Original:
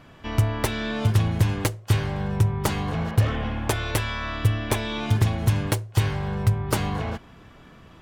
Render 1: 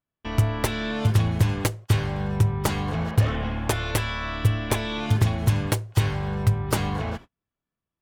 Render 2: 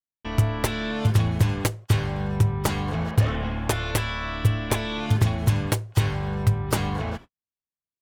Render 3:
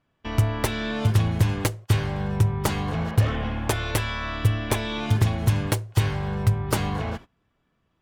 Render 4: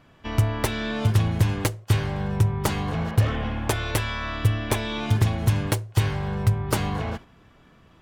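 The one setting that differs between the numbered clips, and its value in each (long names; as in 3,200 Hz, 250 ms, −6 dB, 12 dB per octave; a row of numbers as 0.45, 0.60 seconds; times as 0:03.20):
noise gate, range: −41, −59, −23, −6 decibels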